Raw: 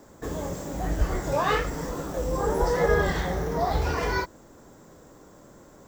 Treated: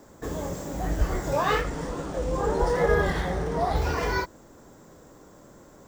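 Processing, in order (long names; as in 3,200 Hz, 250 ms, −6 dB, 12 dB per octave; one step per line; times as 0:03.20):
0:01.61–0:03.76: linearly interpolated sample-rate reduction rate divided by 3×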